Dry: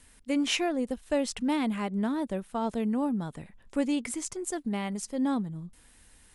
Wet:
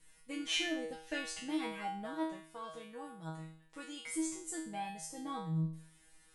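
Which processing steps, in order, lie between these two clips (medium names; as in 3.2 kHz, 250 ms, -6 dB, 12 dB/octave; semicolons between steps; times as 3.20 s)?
0.92–1.19 s: time-frequency box 1.4–6.8 kHz +9 dB; 2.13–4.13 s: bass shelf 500 Hz -9.5 dB; feedback comb 160 Hz, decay 0.52 s, harmonics all, mix 100%; trim +8 dB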